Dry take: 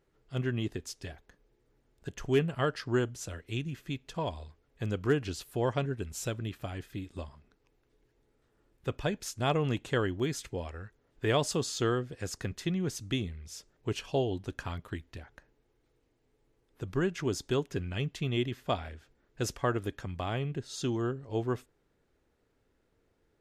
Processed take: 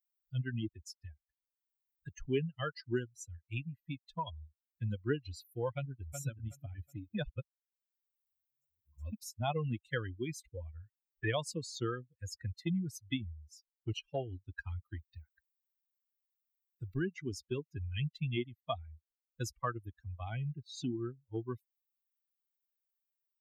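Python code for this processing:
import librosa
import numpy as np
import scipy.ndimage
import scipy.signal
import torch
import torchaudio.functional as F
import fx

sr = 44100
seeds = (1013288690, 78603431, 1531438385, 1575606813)

y = fx.echo_throw(x, sr, start_s=5.73, length_s=0.45, ms=370, feedback_pct=50, wet_db=-4.5)
y = fx.edit(y, sr, fx.reverse_span(start_s=7.15, length_s=1.98), tone=tone)
y = fx.bin_expand(y, sr, power=3.0)
y = fx.band_squash(y, sr, depth_pct=70)
y = y * 10.0 ** (3.0 / 20.0)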